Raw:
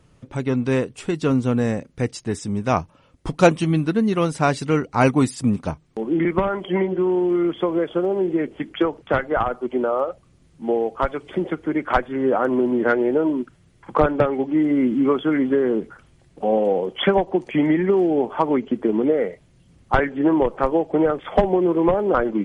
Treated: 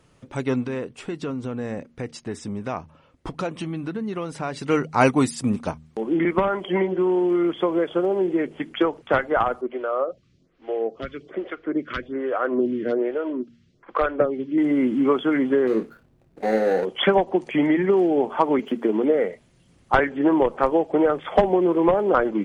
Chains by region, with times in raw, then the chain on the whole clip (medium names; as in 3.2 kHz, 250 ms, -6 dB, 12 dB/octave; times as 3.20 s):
0.65–4.67 s: treble shelf 4.7 kHz -10.5 dB + compression, threshold -23 dBFS
9.61–14.58 s: low-pass 5.5 kHz 24 dB/octave + peaking EQ 870 Hz -12.5 dB 0.31 oct + lamp-driven phase shifter 1.2 Hz
15.67–16.85 s: median filter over 41 samples + doubling 27 ms -8 dB
18.59–19.15 s: median filter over 5 samples + high-pass 160 Hz + tape noise reduction on one side only encoder only
whole clip: bass shelf 190 Hz -8 dB; de-hum 78.13 Hz, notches 3; trim +1 dB